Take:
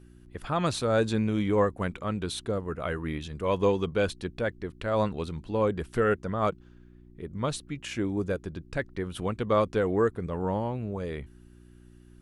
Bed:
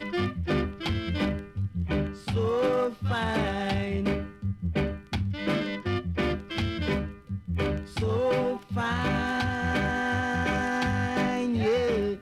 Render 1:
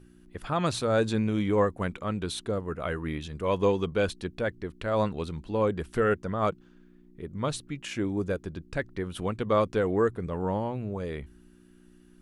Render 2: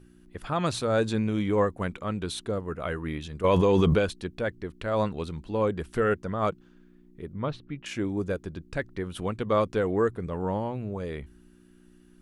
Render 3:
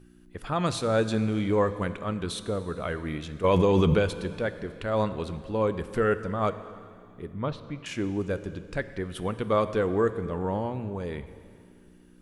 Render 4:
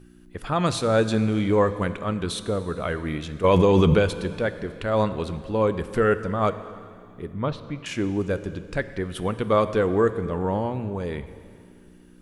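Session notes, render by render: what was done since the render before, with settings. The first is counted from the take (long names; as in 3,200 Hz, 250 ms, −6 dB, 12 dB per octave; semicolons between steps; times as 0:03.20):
hum removal 60 Hz, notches 2
0:03.44–0:03.99: envelope flattener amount 100%; 0:07.33–0:07.86: high-frequency loss of the air 300 metres
dense smooth reverb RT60 2.4 s, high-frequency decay 1×, DRR 11.5 dB
level +4 dB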